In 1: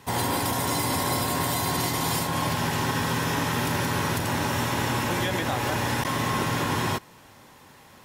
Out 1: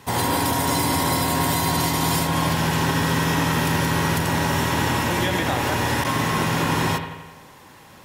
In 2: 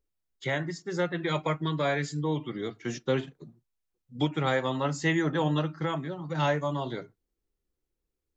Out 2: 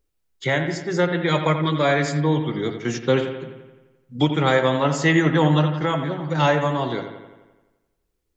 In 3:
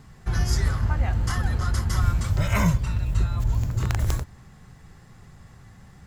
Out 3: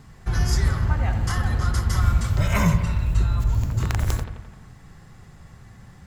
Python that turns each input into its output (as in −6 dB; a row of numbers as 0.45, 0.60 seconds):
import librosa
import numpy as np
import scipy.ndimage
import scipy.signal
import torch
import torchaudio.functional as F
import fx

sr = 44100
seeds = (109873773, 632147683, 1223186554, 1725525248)

y = fx.echo_bbd(x, sr, ms=86, stages=2048, feedback_pct=60, wet_db=-9.0)
y = y * 10.0 ** (-22 / 20.0) / np.sqrt(np.mean(np.square(y)))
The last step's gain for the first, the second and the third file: +3.5, +8.0, +1.5 decibels